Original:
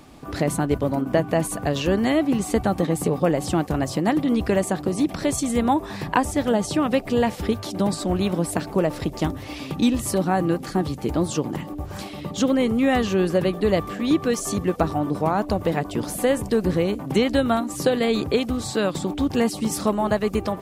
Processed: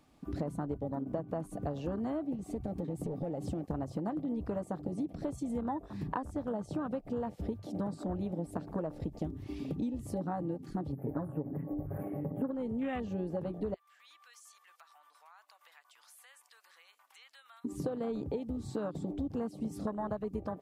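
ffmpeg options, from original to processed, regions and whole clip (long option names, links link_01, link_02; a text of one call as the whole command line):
ffmpeg -i in.wav -filter_complex "[0:a]asettb=1/sr,asplit=3[link_01][link_02][link_03];[link_01]atrim=end=2.354[link_04];[link_02]atrim=start=2.35:end=3.68,asetpts=PTS-STARTPTS,afade=type=in:duration=0.004:curve=qsin,afade=type=out:start_time=1.326:duration=0.004:curve=qsin,acompressor=threshold=-23dB:ratio=2.5:attack=3.2:release=140:knee=1:detection=peak,aeval=exprs='clip(val(0),-1,0.0708)':channel_layout=same[link_05];[link_03]atrim=start=3.676[link_06];[link_04][link_05]acrossfade=duration=0.004:curve1=hsin:curve2=qsin[link_07];[link_07][link_06]acrossfade=duration=0.004:curve1=qsin:curve2=hsin,asettb=1/sr,asplit=3[link_08][link_09][link_10];[link_08]atrim=end=10.924[link_11];[link_09]atrim=start=10.92:end=12.51,asetpts=PTS-STARTPTS,afade=type=in:duration=0.004:curve=qsin,afade=type=out:start_time=1.586:duration=0.004:curve=qsin,asuperstop=centerf=5100:order=8:qfactor=0.52,highshelf=frequency=2300:gain=9.5,aecho=1:1:7.2:0.97,atrim=end_sample=70119[link_12];[link_10]atrim=start=12.506[link_13];[link_11][link_12]acrossfade=duration=0.004:curve1=hsin:curve2=qsin[link_14];[link_14][link_13]acrossfade=duration=0.004:curve1=qsin:curve2=hsin,asettb=1/sr,asplit=3[link_15][link_16][link_17];[link_15]atrim=end=13.744[link_18];[link_16]atrim=start=13.74:end=17.65,asetpts=PTS-STARTPTS,afade=type=in:duration=0.004:curve=qsin,afade=type=out:start_time=3.906:duration=0.004:curve=qsin,highpass=frequency=1100:width=0.5412,highpass=frequency=1100:width=1.3066,acompressor=threshold=-42dB:ratio=2:attack=3.2:release=140:knee=1:detection=peak[link_19];[link_17]atrim=start=17.646[link_20];[link_18][link_19]acrossfade=duration=0.004:curve1=hsin:curve2=qsin[link_21];[link_21][link_20]acrossfade=duration=0.004:curve1=qsin:curve2=hsin,bandreject=frequency=380:width=12,afwtdn=0.0562,acompressor=threshold=-32dB:ratio=5,volume=-2dB" out.wav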